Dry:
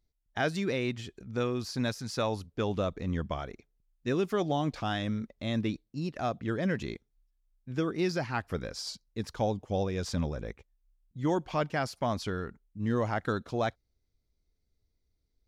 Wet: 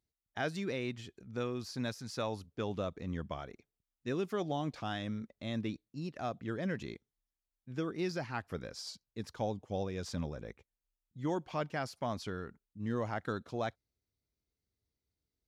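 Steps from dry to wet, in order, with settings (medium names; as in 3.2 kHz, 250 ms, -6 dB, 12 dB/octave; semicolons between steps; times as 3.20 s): high-pass 76 Hz; trim -6 dB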